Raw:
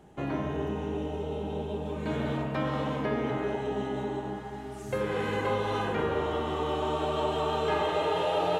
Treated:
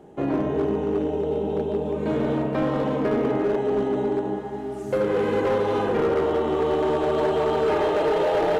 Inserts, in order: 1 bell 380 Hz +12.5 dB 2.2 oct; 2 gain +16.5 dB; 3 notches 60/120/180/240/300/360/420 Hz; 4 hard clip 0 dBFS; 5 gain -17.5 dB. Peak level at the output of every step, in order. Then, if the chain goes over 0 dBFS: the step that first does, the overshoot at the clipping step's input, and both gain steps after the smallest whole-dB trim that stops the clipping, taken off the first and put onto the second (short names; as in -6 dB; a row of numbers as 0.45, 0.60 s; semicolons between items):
-6.5, +10.0, +10.0, 0.0, -17.5 dBFS; step 2, 10.0 dB; step 2 +6.5 dB, step 5 -7.5 dB